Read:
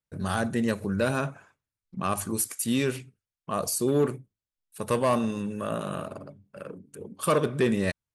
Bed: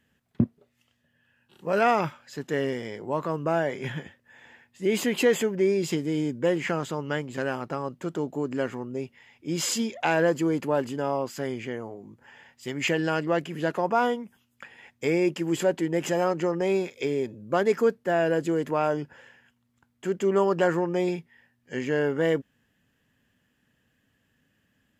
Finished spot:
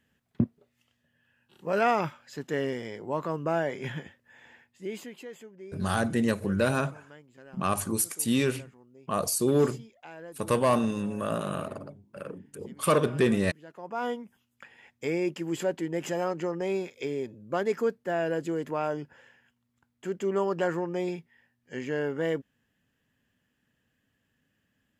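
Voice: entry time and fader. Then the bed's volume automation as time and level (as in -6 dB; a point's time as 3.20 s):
5.60 s, +0.5 dB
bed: 4.60 s -2.5 dB
5.24 s -22 dB
13.67 s -22 dB
14.10 s -5 dB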